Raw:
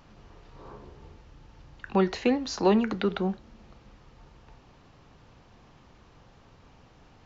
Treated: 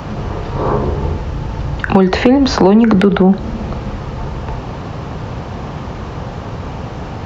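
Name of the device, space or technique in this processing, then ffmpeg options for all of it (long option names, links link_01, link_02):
mastering chain: -filter_complex "[0:a]highpass=52,equalizer=frequency=290:width_type=o:width=0.83:gain=-3.5,acrossover=split=170|3900[link_01][link_02][link_03];[link_01]acompressor=threshold=-41dB:ratio=4[link_04];[link_02]acompressor=threshold=-33dB:ratio=4[link_05];[link_03]acompressor=threshold=-57dB:ratio=4[link_06];[link_04][link_05][link_06]amix=inputs=3:normalize=0,acompressor=threshold=-37dB:ratio=2.5,tiltshelf=frequency=1400:gain=5.5,asoftclip=type=hard:threshold=-26dB,alimiter=level_in=29dB:limit=-1dB:release=50:level=0:latency=1,volume=-1dB"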